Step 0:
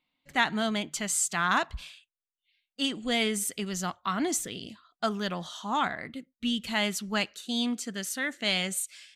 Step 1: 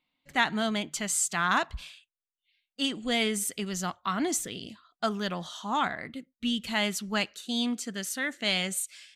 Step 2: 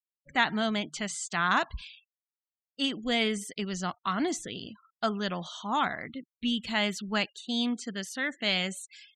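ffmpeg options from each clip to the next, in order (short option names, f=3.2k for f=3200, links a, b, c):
-af anull
-filter_complex "[0:a]acrossover=split=5900[a][b];[b]acompressor=threshold=-46dB:ratio=4:attack=1:release=60[c];[a][c]amix=inputs=2:normalize=0,afftfilt=real='re*gte(hypot(re,im),0.00447)':imag='im*gte(hypot(re,im),0.00447)':win_size=1024:overlap=0.75"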